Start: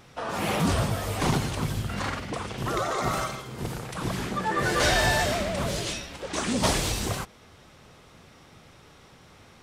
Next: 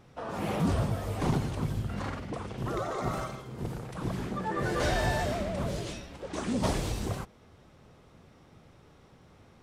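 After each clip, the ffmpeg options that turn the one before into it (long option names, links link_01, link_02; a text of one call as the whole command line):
ffmpeg -i in.wav -af "tiltshelf=frequency=1100:gain=5,volume=-7dB" out.wav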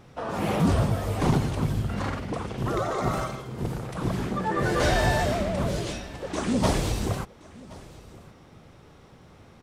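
ffmpeg -i in.wav -af "aecho=1:1:1072:0.0841,volume=5.5dB" out.wav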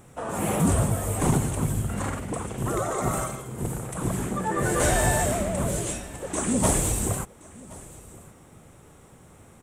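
ffmpeg -i in.wav -af "highshelf=frequency=6300:width_type=q:width=3:gain=9.5" out.wav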